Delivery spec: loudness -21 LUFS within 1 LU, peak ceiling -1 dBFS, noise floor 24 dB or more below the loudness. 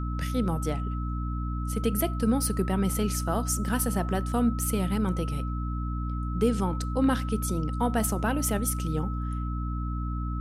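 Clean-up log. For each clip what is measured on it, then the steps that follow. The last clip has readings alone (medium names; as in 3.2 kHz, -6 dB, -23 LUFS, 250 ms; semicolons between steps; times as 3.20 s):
hum 60 Hz; highest harmonic 300 Hz; hum level -28 dBFS; steady tone 1.3 kHz; tone level -39 dBFS; loudness -28.5 LUFS; peak level -12.5 dBFS; loudness target -21.0 LUFS
-> de-hum 60 Hz, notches 5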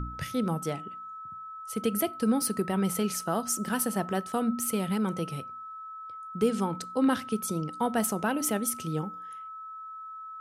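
hum not found; steady tone 1.3 kHz; tone level -39 dBFS
-> band-stop 1.3 kHz, Q 30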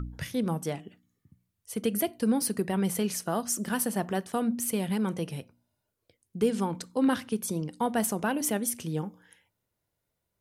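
steady tone not found; loudness -29.5 LUFS; peak level -14.0 dBFS; loudness target -21.0 LUFS
-> trim +8.5 dB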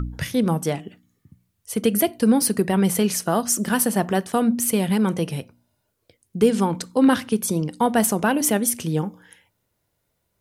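loudness -21.0 LUFS; peak level -5.5 dBFS; noise floor -74 dBFS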